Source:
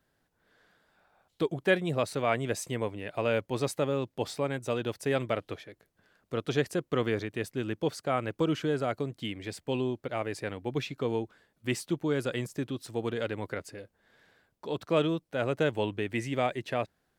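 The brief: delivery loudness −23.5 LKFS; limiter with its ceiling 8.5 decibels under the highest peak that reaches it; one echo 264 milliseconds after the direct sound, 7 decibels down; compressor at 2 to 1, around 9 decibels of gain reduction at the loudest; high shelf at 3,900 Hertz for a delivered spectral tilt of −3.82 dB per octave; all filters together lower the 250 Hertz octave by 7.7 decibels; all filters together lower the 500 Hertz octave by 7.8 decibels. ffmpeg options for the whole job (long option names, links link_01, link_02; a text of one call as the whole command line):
ffmpeg -i in.wav -af "equalizer=frequency=250:width_type=o:gain=-8,equalizer=frequency=500:width_type=o:gain=-7.5,highshelf=frequency=3900:gain=6,acompressor=threshold=-40dB:ratio=2,alimiter=level_in=6.5dB:limit=-24dB:level=0:latency=1,volume=-6.5dB,aecho=1:1:264:0.447,volume=19.5dB" out.wav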